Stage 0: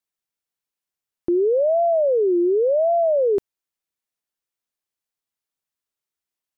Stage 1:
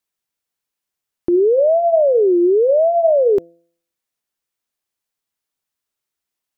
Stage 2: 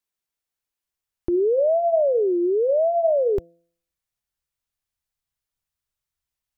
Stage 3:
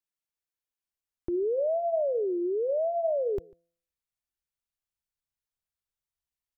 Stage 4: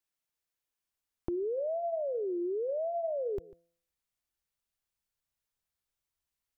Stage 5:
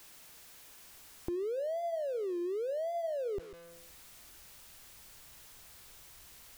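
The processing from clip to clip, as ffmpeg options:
ffmpeg -i in.wav -af "bandreject=frequency=169.4:width_type=h:width=4,bandreject=frequency=338.8:width_type=h:width=4,bandreject=frequency=508.2:width_type=h:width=4,bandreject=frequency=677.6:width_type=h:width=4,volume=5dB" out.wav
ffmpeg -i in.wav -af "asubboost=boost=9:cutoff=99,volume=-4.5dB" out.wav
ffmpeg -i in.wav -filter_complex "[0:a]asplit=2[link_01][link_02];[link_02]adelay=145.8,volume=-26dB,highshelf=frequency=4000:gain=-3.28[link_03];[link_01][link_03]amix=inputs=2:normalize=0,volume=-8dB" out.wav
ffmpeg -i in.wav -af "acompressor=threshold=-35dB:ratio=6,volume=3dB" out.wav
ffmpeg -i in.wav -af "aeval=exprs='val(0)+0.5*0.00631*sgn(val(0))':channel_layout=same,volume=-3dB" out.wav

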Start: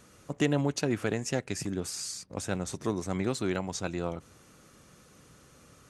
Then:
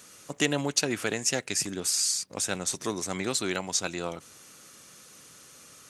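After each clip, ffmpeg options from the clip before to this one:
ffmpeg -i in.wav -af "highpass=frequency=210:poles=1,highshelf=frequency=2100:gain=12" out.wav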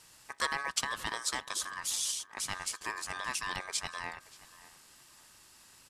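ffmpeg -i in.wav -filter_complex "[0:a]aeval=exprs='val(0)*sin(2*PI*1400*n/s)':channel_layout=same,asplit=2[link_01][link_02];[link_02]adelay=579,lowpass=frequency=3900:poles=1,volume=-18.5dB,asplit=2[link_03][link_04];[link_04]adelay=579,lowpass=frequency=3900:poles=1,volume=0.29[link_05];[link_01][link_03][link_05]amix=inputs=3:normalize=0,volume=-4dB" out.wav

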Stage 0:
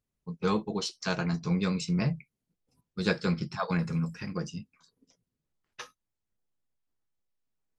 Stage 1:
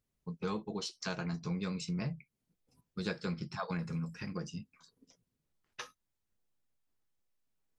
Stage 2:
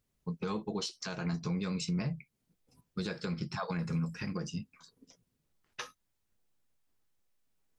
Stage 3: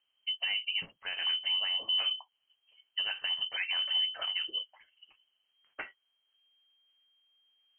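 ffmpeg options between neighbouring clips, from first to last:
ffmpeg -i in.wav -af "acompressor=threshold=-42dB:ratio=2,volume=1dB" out.wav
ffmpeg -i in.wav -af "alimiter=level_in=5.5dB:limit=-24dB:level=0:latency=1:release=82,volume=-5.5dB,volume=4.5dB" out.wav
ffmpeg -i in.wav -af "lowpass=frequency=2700:width_type=q:width=0.5098,lowpass=frequency=2700:width_type=q:width=0.6013,lowpass=frequency=2700:width_type=q:width=0.9,lowpass=frequency=2700:width_type=q:width=2.563,afreqshift=-3200,volume=2.5dB" out.wav

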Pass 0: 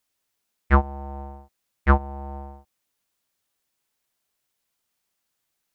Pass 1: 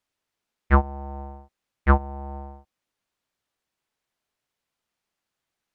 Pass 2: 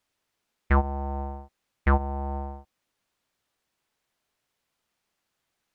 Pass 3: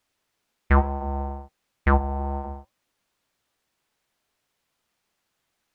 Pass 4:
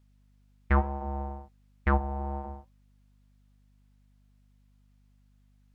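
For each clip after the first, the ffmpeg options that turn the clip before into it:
ffmpeg -i in.wav -af "aemphasis=mode=reproduction:type=50kf" out.wav
ffmpeg -i in.wav -af "alimiter=limit=-15dB:level=0:latency=1:release=73,volume=4dB" out.wav
ffmpeg -i in.wav -af "flanger=delay=2.4:depth=7.9:regen=-85:speed=0.7:shape=triangular,volume=7.5dB" out.wav
ffmpeg -i in.wav -af "aeval=exprs='val(0)+0.00158*(sin(2*PI*50*n/s)+sin(2*PI*2*50*n/s)/2+sin(2*PI*3*50*n/s)/3+sin(2*PI*4*50*n/s)/4+sin(2*PI*5*50*n/s)/5)':channel_layout=same,volume=-5.5dB" out.wav

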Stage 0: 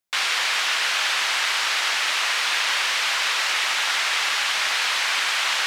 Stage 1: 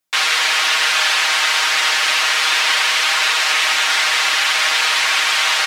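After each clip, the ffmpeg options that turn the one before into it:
ffmpeg -i in.wav -af "aecho=1:1:6.4:1,volume=3.5dB" out.wav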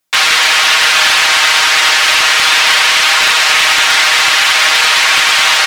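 ffmpeg -i in.wav -af "aeval=exprs='0.376*(abs(mod(val(0)/0.376+3,4)-2)-1)':channel_layout=same,volume=7dB" out.wav

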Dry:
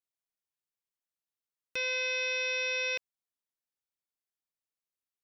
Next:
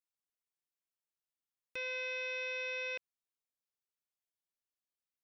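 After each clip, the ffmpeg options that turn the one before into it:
ffmpeg -i in.wav -filter_complex "[0:a]acrossover=split=3300[link_01][link_02];[link_02]acompressor=threshold=-49dB:ratio=4:attack=1:release=60[link_03];[link_01][link_03]amix=inputs=2:normalize=0,volume=-5.5dB" out.wav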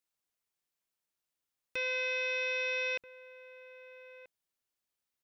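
ffmpeg -i in.wav -filter_complex "[0:a]asplit=2[link_01][link_02];[link_02]adelay=1283,volume=-14dB,highshelf=frequency=4000:gain=-28.9[link_03];[link_01][link_03]amix=inputs=2:normalize=0,volume=5.5dB" out.wav

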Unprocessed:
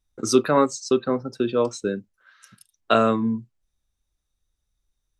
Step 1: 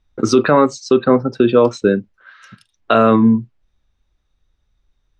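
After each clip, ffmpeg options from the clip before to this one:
ffmpeg -i in.wav -af "lowpass=3300,alimiter=level_in=13dB:limit=-1dB:release=50:level=0:latency=1,volume=-1dB" out.wav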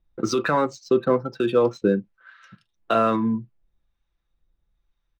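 ffmpeg -i in.wav -filter_complex "[0:a]aecho=1:1:5.9:0.37,acrossover=split=800[link_01][link_02];[link_01]aeval=exprs='val(0)*(1-0.5/2+0.5/2*cos(2*PI*1.1*n/s))':channel_layout=same[link_03];[link_02]aeval=exprs='val(0)*(1-0.5/2-0.5/2*cos(2*PI*1.1*n/s))':channel_layout=same[link_04];[link_03][link_04]amix=inputs=2:normalize=0,adynamicsmooth=sensitivity=6.5:basefreq=5300,volume=-5.5dB" out.wav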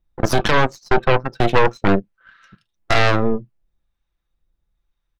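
ffmpeg -i in.wav -af "aeval=exprs='0.422*(cos(1*acos(clip(val(0)/0.422,-1,1)))-cos(1*PI/2))+0.211*(cos(6*acos(clip(val(0)/0.422,-1,1)))-cos(6*PI/2))':channel_layout=same" out.wav

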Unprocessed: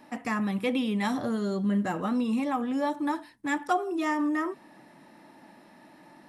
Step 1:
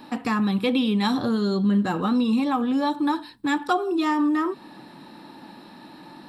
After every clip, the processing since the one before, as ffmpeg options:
ffmpeg -i in.wav -filter_complex "[0:a]equalizer=frequency=630:width_type=o:width=0.33:gain=-9,equalizer=frequency=2000:width_type=o:width=0.33:gain=-9,equalizer=frequency=4000:width_type=o:width=0.33:gain=9,equalizer=frequency=6300:width_type=o:width=0.33:gain=-11,equalizer=frequency=10000:width_type=o:width=0.33:gain=-9,asplit=2[link_01][link_02];[link_02]acompressor=threshold=-36dB:ratio=6,volume=1dB[link_03];[link_01][link_03]amix=inputs=2:normalize=0,volume=3.5dB" out.wav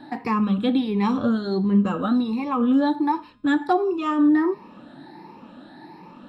ffmpeg -i in.wav -af "afftfilt=real='re*pow(10,12/40*sin(2*PI*(0.81*log(max(b,1)*sr/1024/100)/log(2)-(1.4)*(pts-256)/sr)))':imag='im*pow(10,12/40*sin(2*PI*(0.81*log(max(b,1)*sr/1024/100)/log(2)-(1.4)*(pts-256)/sr)))':win_size=1024:overlap=0.75,lowpass=frequency=1800:poles=1,bandreject=frequency=206.9:width_type=h:width=4,bandreject=frequency=413.8:width_type=h:width=4,bandreject=frequency=620.7:width_type=h:width=4,bandreject=frequency=827.6:width_type=h:width=4,bandreject=frequency=1034.5:width_type=h:width=4,bandreject=frequency=1241.4:width_type=h:width=4,bandreject=frequency=1448.3:width_type=h:width=4,bandreject=frequency=1655.2:width_type=h:width=4,bandreject=frequency=1862.1:width_type=h:width=4,bandreject=frequency=2069:width_type=h:width=4,bandreject=frequency=2275.9:width_type=h:width=4,bandreject=frequency=2482.8:width_type=h:width=4,bandreject=frequency=2689.7:width_type=h:width=4,bandreject=frequency=2896.6:width_type=h:width=4,bandreject=frequency=3103.5:width_type=h:width=4,bandreject=frequency=3310.4:width_type=h:width=4,bandreject=frequency=3517.3:width_type=h:width=4,bandreject=frequency=3724.2:width_type=h:width=4,bandreject=frequency=3931.1:width_type=h:width=4,bandreject=frequency=4138:width_type=h:width=4,bandreject=frequency=4344.9:width_type=h:width=4,bandreject=frequency=4551.8:width_type=h:width=4,bandreject=frequency=4758.7:width_type=h:width=4,bandreject=frequency=4965.6:width_type=h:width=4,bandreject=frequency=5172.5:width_type=h:width=4,bandreject=frequency=5379.4:width_type=h:width=4,bandreject=frequency=5586.3:width_type=h:width=4,bandreject=frequency=5793.2:width_type=h:width=4,bandreject=frequency=6000.1:width_type=h:width=4,bandreject=frequency=6207:width_type=h:width=4,bandreject=frequency=6413.9:width_type=h:width=4,bandreject=frequency=6620.8:width_type=h:width=4,bandreject=frequency=6827.7:width_type=h:width=4,bandreject=frequency=7034.6:width_type=h:width=4,bandreject=frequency=7241.5:width_type=h:width=4,bandreject=frequency=7448.4:width_type=h:width=4,bandreject=frequency=7655.3:width_type=h:width=4" out.wav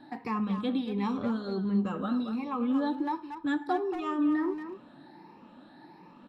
ffmpeg -i in.wav -filter_complex "[0:a]asplit=2[link_01][link_02];[link_02]adelay=230,highpass=300,lowpass=3400,asoftclip=type=hard:threshold=-18dB,volume=-8dB[link_03];[link_01][link_03]amix=inputs=2:normalize=0,volume=-9dB" out.wav

